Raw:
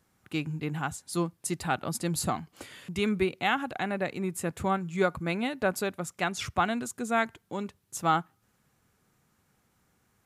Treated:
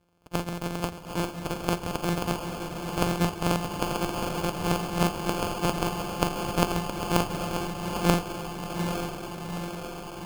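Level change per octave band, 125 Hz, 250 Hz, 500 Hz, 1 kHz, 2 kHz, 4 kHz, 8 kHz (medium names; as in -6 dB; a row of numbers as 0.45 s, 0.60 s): +6.0 dB, +3.0 dB, +1.5 dB, +1.0 dB, -2.0 dB, +4.5 dB, +0.5 dB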